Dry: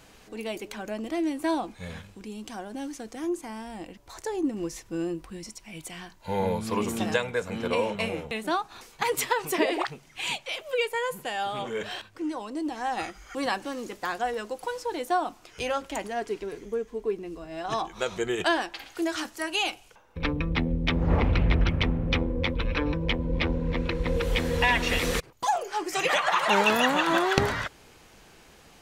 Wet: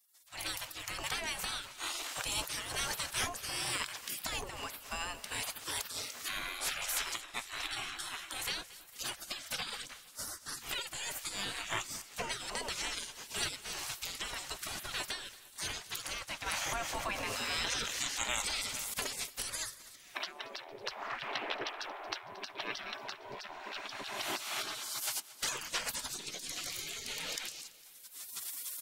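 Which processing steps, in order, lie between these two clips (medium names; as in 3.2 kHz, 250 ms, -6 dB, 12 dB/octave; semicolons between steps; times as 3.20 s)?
recorder AGC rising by 28 dB/s; spectral gate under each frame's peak -25 dB weak; feedback delay 228 ms, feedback 53%, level -18.5 dB; 16.46–18.94 s: level flattener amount 70%; trim -1.5 dB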